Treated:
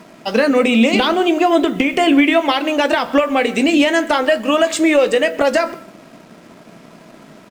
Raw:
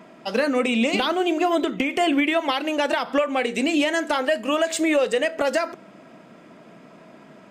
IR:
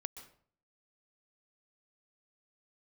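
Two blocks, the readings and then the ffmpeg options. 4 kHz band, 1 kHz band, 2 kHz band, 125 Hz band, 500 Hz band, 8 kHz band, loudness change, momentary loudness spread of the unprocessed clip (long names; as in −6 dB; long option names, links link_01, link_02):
+6.5 dB, +6.5 dB, +6.5 dB, can't be measured, +7.0 dB, +4.5 dB, +7.0 dB, 3 LU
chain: -filter_complex "[0:a]asplit=2[link_01][link_02];[1:a]atrim=start_sample=2205,lowpass=8600,lowshelf=frequency=230:gain=10.5[link_03];[link_02][link_03]afir=irnorm=-1:irlink=0,volume=-4.5dB[link_04];[link_01][link_04]amix=inputs=2:normalize=0,acrusher=bits=7:mix=0:aa=0.5,asplit=2[link_05][link_06];[link_06]adelay=18,volume=-12.5dB[link_07];[link_05][link_07]amix=inputs=2:normalize=0,aeval=exprs='sgn(val(0))*max(abs(val(0))-0.00266,0)':channel_layout=same,volume=3.5dB"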